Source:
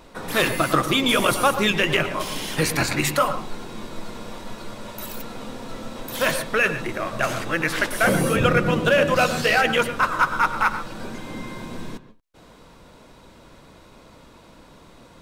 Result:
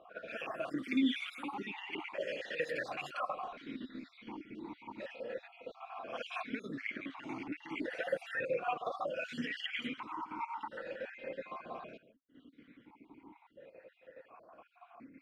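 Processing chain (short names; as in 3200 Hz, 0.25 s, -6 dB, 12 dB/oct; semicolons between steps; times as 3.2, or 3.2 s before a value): random spectral dropouts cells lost 54%; low-pass opened by the level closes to 2200 Hz, open at -21 dBFS; bell 1600 Hz +4.5 dB 0.93 oct; limiter -15 dBFS, peak gain reduction 9.5 dB; compressor, threshold -28 dBFS, peak gain reduction 8.5 dB; reverse echo 55 ms -11 dB; vowel sequencer 1.4 Hz; gain +5.5 dB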